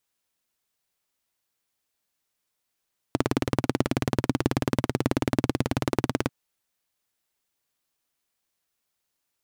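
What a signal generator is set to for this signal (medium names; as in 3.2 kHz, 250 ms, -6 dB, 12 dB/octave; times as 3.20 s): single-cylinder engine model, steady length 3.14 s, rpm 2200, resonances 130/260 Hz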